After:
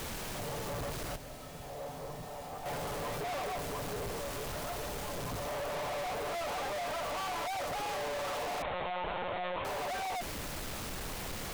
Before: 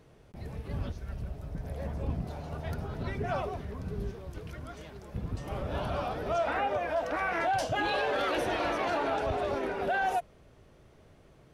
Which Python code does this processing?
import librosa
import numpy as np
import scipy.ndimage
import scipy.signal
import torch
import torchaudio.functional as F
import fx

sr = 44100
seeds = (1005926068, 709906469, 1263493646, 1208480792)

y = fx.lower_of_two(x, sr, delay_ms=6.9)
y = fx.band_shelf(y, sr, hz=750.0, db=13.0, octaves=1.7)
y = fx.dmg_noise_colour(y, sr, seeds[0], colour='pink', level_db=-39.0)
y = fx.comb_fb(y, sr, f0_hz=260.0, decay_s=0.63, harmonics='odd', damping=0.0, mix_pct=80, at=(1.16, 2.66))
y = 10.0 ** (-38.5 / 20.0) * np.tanh(y / 10.0 ** (-38.5 / 20.0))
y = fx.lpc_monotone(y, sr, seeds[1], pitch_hz=180.0, order=16, at=(8.62, 9.65))
y = y * librosa.db_to_amplitude(3.0)